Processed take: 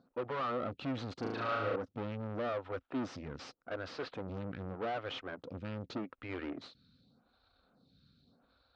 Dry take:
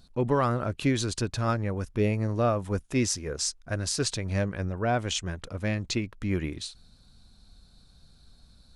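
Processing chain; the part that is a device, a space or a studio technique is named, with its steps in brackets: vibe pedal into a guitar amplifier (lamp-driven phase shifter 0.84 Hz; valve stage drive 38 dB, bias 0.75; cabinet simulation 110–3900 Hz, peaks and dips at 270 Hz +8 dB, 510 Hz +8 dB, 750 Hz +3 dB, 1.3 kHz +8 dB); 1.19–1.76 s: flutter echo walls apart 6.3 m, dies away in 1.2 s

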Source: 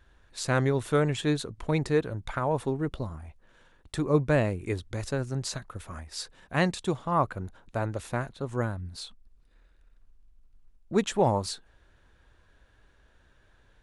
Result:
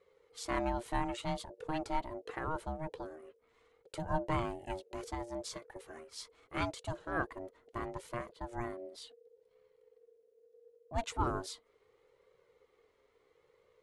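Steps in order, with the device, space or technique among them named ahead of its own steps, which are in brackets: alien voice (ring modulator 470 Hz; flange 0.73 Hz, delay 1.7 ms, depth 1.5 ms, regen -40%); trim -3 dB

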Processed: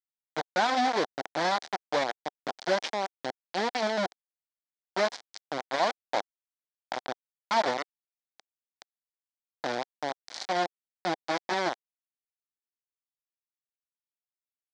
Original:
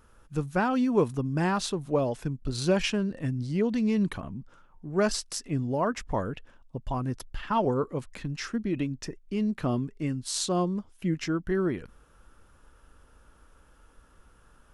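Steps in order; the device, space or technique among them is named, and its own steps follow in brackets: 7.77–9.54 s: frequency weighting A; hand-held game console (bit crusher 4-bit; cabinet simulation 410–5200 Hz, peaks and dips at 420 Hz -6 dB, 750 Hz +5 dB, 1.2 kHz -5 dB, 2.7 kHz -10 dB)

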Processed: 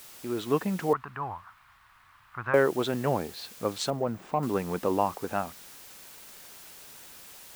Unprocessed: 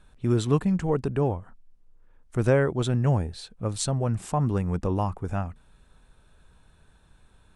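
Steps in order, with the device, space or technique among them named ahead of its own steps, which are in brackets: dictaphone (band-pass 310–4200 Hz; level rider gain up to 10 dB; wow and flutter; white noise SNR 19 dB); 0.93–2.54 s: FFT filter 110 Hz 0 dB, 210 Hz -15 dB, 490 Hz -24 dB, 1.1 kHz +6 dB, 6.5 kHz -24 dB; 3.90–4.43 s: de-esser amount 95%; trim -6 dB

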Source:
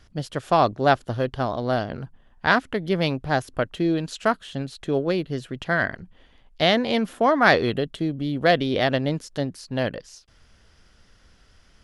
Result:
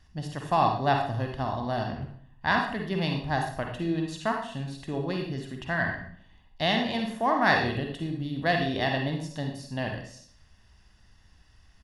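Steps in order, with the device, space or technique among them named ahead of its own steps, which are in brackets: microphone above a desk (comb 1.1 ms, depth 55%; reverberation RT60 0.55 s, pre-delay 42 ms, DRR 1.5 dB); trim -7.5 dB

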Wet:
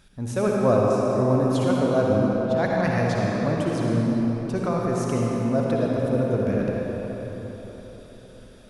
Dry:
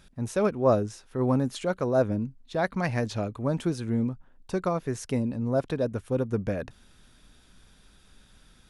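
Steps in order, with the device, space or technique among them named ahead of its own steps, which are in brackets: cathedral (reverberation RT60 4.6 s, pre-delay 52 ms, DRR -3.5 dB)

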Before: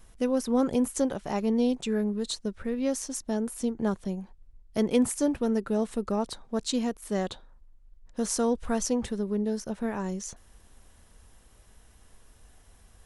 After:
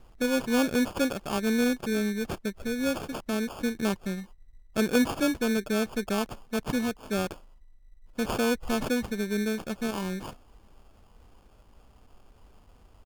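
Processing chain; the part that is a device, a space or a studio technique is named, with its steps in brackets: crushed at another speed (playback speed 0.8×; sample-and-hold 28×; playback speed 1.25×)

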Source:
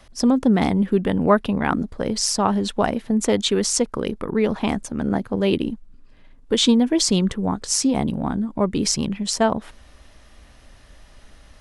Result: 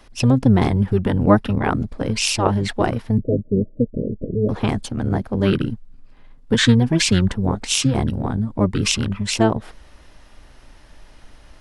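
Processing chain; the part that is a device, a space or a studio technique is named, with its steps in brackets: 3.18–4.49 s: Chebyshev low-pass 640 Hz, order 10; octave pedal (harmony voices -12 st 0 dB); trim -1 dB

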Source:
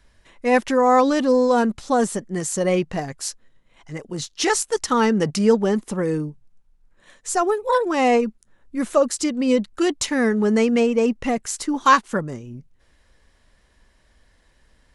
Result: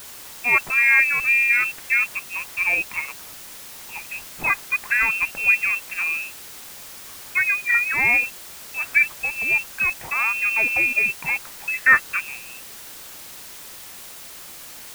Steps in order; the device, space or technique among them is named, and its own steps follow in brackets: scrambled radio voice (band-pass 320–3000 Hz; frequency inversion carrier 2.9 kHz; white noise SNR 16 dB)

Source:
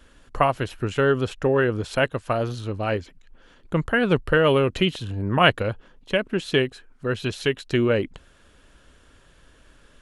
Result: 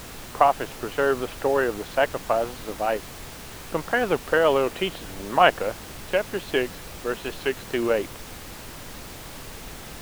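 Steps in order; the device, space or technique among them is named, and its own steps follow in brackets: horn gramophone (band-pass 300–3200 Hz; peaking EQ 770 Hz +8 dB; wow and flutter; pink noise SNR 13 dB); trim -2.5 dB

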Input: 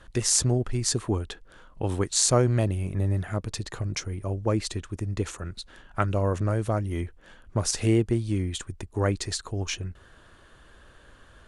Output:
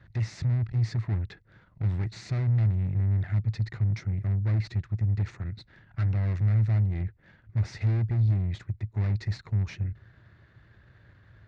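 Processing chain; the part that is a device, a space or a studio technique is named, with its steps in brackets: guitar amplifier (valve stage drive 34 dB, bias 0.8; tone controls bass +14 dB, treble +7 dB; cabinet simulation 100–4000 Hz, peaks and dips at 110 Hz +9 dB, 250 Hz -7 dB, 490 Hz -4 dB, 1.1 kHz -4 dB, 2 kHz +9 dB, 3.1 kHz -10 dB); trim -3 dB

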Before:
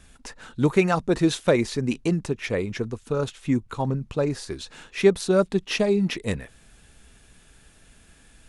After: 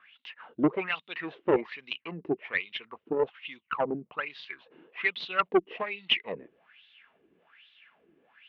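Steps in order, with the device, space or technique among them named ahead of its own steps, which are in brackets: wah-wah guitar rig (wah-wah 1.2 Hz 330–3800 Hz, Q 5.8; valve stage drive 25 dB, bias 0.6; cabinet simulation 97–3600 Hz, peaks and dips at 110 Hz -7 dB, 170 Hz +4 dB, 1.1 kHz +5 dB, 2.1 kHz +7 dB, 2.9 kHz +9 dB); trim +9 dB

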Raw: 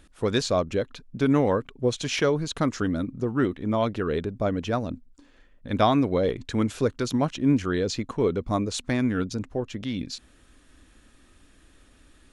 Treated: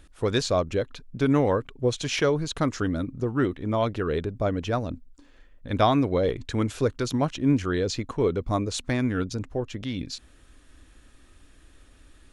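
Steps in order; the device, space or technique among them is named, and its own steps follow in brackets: low shelf boost with a cut just above (bass shelf 110 Hz +4.5 dB; peaking EQ 210 Hz -4.5 dB 0.56 oct)

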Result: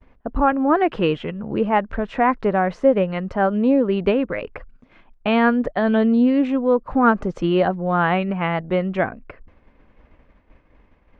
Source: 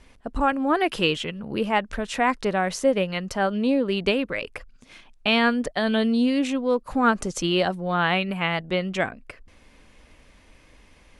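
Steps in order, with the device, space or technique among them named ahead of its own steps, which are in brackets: hearing-loss simulation (low-pass 1.5 kHz 12 dB/octave; expander -47 dBFS); trim +5 dB

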